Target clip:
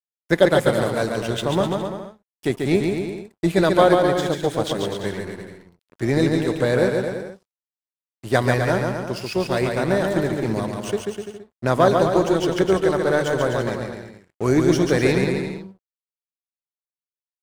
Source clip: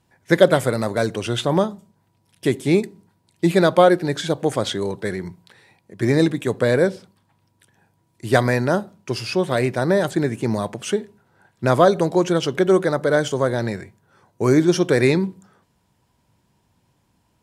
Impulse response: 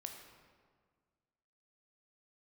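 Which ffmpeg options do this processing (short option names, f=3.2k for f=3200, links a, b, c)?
-af "tremolo=f=300:d=0.261,aeval=exprs='sgn(val(0))*max(abs(val(0))-0.0133,0)':c=same,aecho=1:1:140|252|341.6|413.3|470.6:0.631|0.398|0.251|0.158|0.1,volume=-1dB"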